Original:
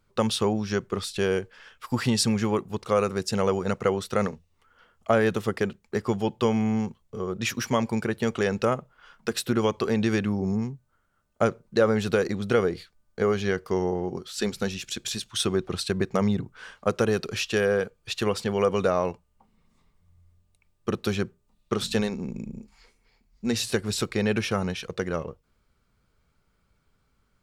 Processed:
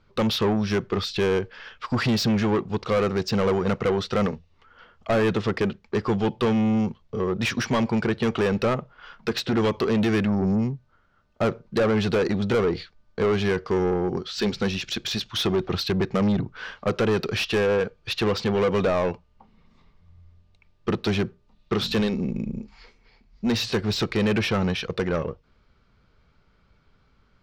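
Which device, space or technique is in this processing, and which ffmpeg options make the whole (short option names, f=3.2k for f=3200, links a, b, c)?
saturation between pre-emphasis and de-emphasis: -af "lowpass=f=5.1k:w=0.5412,lowpass=f=5.1k:w=1.3066,highshelf=f=3.8k:g=8.5,asoftclip=type=tanh:threshold=-25dB,highshelf=f=3.8k:g=-8.5,volume=7.5dB"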